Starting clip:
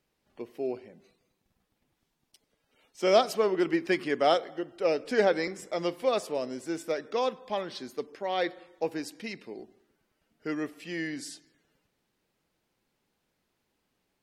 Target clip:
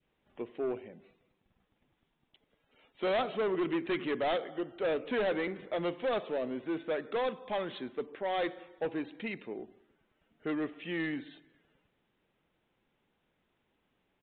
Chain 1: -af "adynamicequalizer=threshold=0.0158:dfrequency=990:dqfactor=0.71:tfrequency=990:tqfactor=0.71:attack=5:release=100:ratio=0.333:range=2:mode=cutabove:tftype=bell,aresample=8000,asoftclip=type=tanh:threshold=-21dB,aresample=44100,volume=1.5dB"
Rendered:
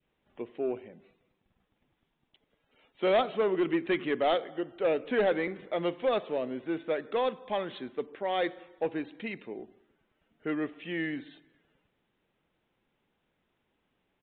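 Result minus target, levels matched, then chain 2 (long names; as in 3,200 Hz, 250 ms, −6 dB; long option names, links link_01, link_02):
soft clipping: distortion −6 dB
-af "adynamicequalizer=threshold=0.0158:dfrequency=990:dqfactor=0.71:tfrequency=990:tqfactor=0.71:attack=5:release=100:ratio=0.333:range=2:mode=cutabove:tftype=bell,aresample=8000,asoftclip=type=tanh:threshold=-28.5dB,aresample=44100,volume=1.5dB"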